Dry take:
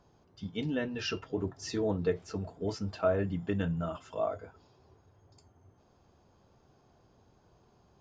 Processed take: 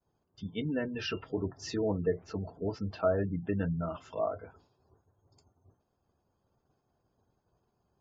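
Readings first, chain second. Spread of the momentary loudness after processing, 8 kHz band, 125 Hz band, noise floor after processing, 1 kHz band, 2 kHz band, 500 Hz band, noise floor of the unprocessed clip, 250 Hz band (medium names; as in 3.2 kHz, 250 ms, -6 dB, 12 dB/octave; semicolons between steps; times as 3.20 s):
9 LU, no reading, 0.0 dB, -79 dBFS, -0.5 dB, -1.0 dB, 0.0 dB, -66 dBFS, 0.0 dB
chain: expander -55 dBFS; low-pass that closes with the level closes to 2.4 kHz, closed at -28.5 dBFS; spectral gate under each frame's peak -30 dB strong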